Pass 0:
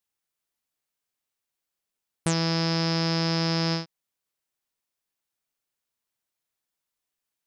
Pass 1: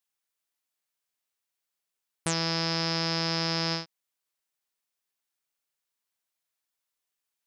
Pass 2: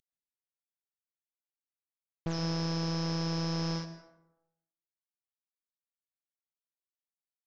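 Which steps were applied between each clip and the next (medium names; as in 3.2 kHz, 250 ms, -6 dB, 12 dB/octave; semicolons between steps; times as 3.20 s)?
bass shelf 470 Hz -8 dB
CVSD coder 32 kbps; on a send at -11.5 dB: reverberation RT60 0.90 s, pre-delay 113 ms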